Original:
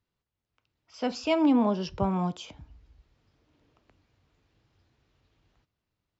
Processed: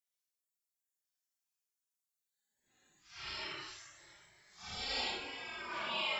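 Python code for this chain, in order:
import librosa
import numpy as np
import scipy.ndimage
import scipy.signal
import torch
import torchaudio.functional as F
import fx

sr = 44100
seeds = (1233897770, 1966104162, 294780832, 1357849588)

p1 = fx.spec_gate(x, sr, threshold_db=-30, keep='weak')
p2 = p1 + fx.echo_wet_highpass(p1, sr, ms=61, feedback_pct=59, hz=4900.0, wet_db=-15.5, dry=0)
p3 = fx.paulstretch(p2, sr, seeds[0], factor=6.1, window_s=0.05, from_s=0.5)
y = p3 * librosa.db_to_amplitude(6.0)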